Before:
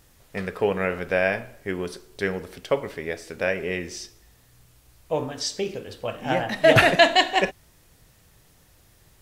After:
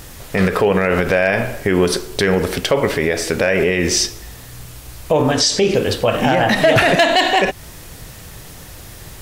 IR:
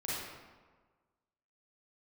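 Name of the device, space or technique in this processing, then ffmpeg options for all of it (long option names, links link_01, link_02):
loud club master: -filter_complex "[0:a]acompressor=threshold=-27dB:ratio=2,asoftclip=type=hard:threshold=-16.5dB,alimiter=level_in=25dB:limit=-1dB:release=50:level=0:latency=1,asettb=1/sr,asplit=3[link_01][link_02][link_03];[link_01]atrim=end=5.324[link_04];[link_02]atrim=start=5.32:end=5.75,asetpts=PTS-STARTPTS,afade=type=in:duration=0.004:curve=qsin,afade=type=out:start_time=0.426:duration=0.004:curve=qsin,lowpass=10000[link_05];[link_03]atrim=start=5.746[link_06];[link_04][link_05]acrossfade=duration=0.004:curve1=hsin:curve2=qsin[link_07];[link_07][link_06]acrossfade=duration=0.004:curve1=qsin:curve2=hsin,volume=-4.5dB"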